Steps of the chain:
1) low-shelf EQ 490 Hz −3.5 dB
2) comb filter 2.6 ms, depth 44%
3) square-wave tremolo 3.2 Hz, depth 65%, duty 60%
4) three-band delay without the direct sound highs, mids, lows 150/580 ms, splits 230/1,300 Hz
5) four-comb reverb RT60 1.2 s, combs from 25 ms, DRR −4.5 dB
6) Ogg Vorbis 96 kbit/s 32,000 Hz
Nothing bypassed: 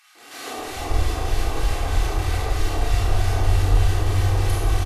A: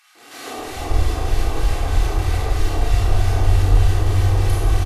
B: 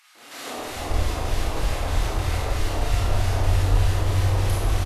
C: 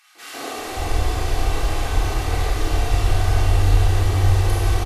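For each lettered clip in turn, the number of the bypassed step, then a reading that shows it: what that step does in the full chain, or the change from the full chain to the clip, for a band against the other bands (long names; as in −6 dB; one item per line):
1, change in momentary loudness spread +2 LU
2, change in integrated loudness −1.5 LU
3, change in integrated loudness +2.0 LU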